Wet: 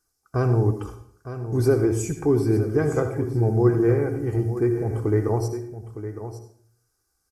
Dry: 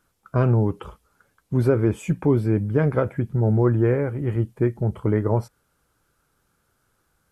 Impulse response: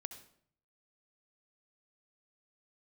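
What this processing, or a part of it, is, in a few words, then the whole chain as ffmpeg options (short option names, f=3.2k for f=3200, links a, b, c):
microphone above a desk: -filter_complex "[0:a]agate=range=-9dB:threshold=-41dB:ratio=16:detection=peak,highshelf=f=4.2k:t=q:w=3:g=8,aecho=1:1:2.6:0.57[a];[1:a]atrim=start_sample=2205[b];[a][b]afir=irnorm=-1:irlink=0,aecho=1:1:910:0.266,volume=1.5dB"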